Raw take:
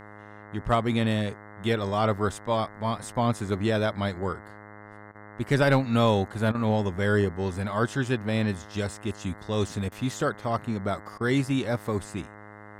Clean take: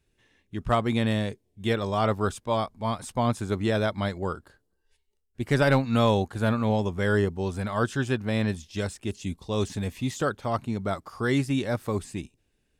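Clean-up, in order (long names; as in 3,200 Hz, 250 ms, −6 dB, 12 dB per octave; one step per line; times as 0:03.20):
hum removal 104.3 Hz, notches 20
repair the gap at 0:05.12/0:06.52/0:09.89/0:11.18, 27 ms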